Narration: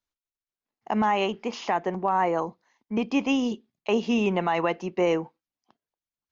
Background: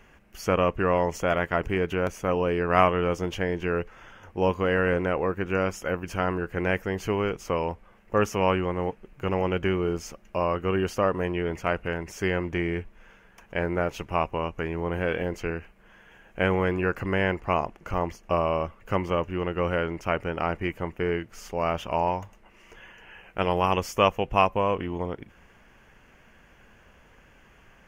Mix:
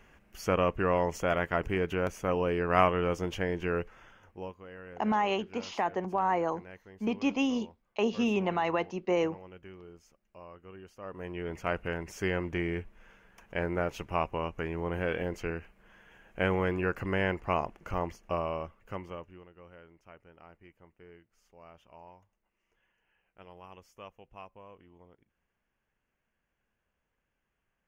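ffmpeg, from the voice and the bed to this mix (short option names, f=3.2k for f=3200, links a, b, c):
-filter_complex "[0:a]adelay=4100,volume=-4.5dB[a];[1:a]volume=15dB,afade=t=out:st=3.78:d=0.77:silence=0.105925,afade=t=in:st=10.99:d=0.78:silence=0.112202,afade=t=out:st=17.86:d=1.62:silence=0.0749894[b];[a][b]amix=inputs=2:normalize=0"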